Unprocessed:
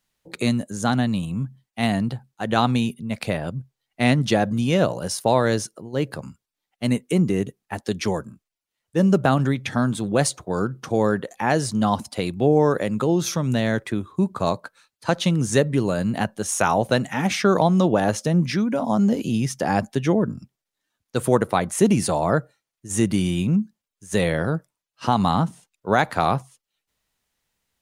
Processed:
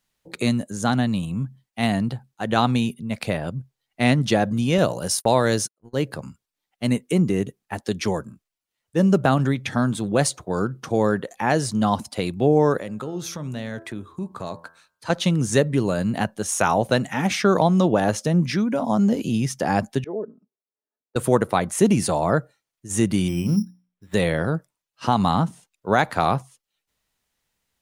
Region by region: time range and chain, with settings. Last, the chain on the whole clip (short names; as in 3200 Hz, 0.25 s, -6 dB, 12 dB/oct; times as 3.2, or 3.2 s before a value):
4.78–6.02 gate -35 dBFS, range -40 dB + high shelf 5000 Hz +7 dB
12.77–15.1 compressor 2:1, threshold -33 dBFS + de-hum 83.39 Hz, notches 21
20.04–21.16 ladder band-pass 480 Hz, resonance 40% + comb 4.7 ms, depth 57%
23.28–24.14 notches 60/120/180/240/300 Hz + careless resampling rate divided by 8×, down filtered, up hold
whole clip: dry